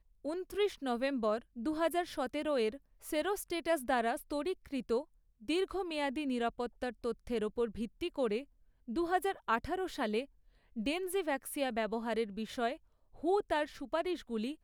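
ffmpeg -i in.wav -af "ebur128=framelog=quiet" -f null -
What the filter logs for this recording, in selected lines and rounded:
Integrated loudness:
  I:         -35.8 LUFS
  Threshold: -46.0 LUFS
Loudness range:
  LRA:         1.9 LU
  Threshold: -56.1 LUFS
  LRA low:   -37.0 LUFS
  LRA high:  -35.1 LUFS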